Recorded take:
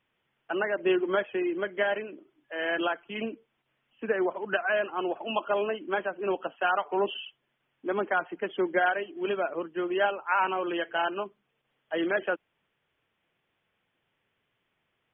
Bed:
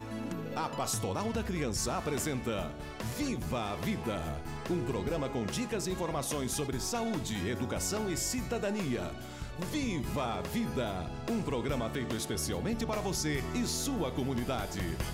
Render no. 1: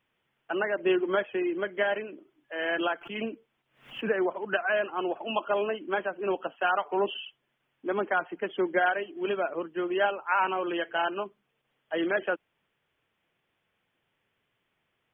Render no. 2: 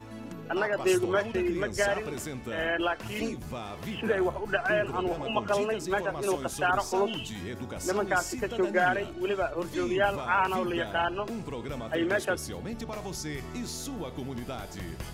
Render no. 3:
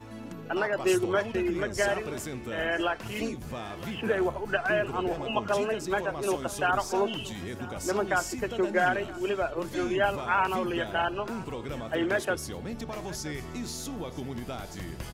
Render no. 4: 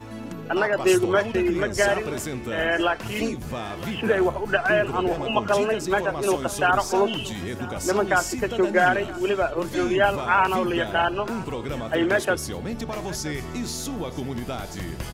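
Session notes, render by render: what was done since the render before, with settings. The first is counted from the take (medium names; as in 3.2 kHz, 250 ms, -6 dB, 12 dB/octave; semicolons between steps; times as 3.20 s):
3.01–4.23 s: swell ahead of each attack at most 130 dB/s
add bed -3.5 dB
delay 974 ms -18.5 dB
trim +6 dB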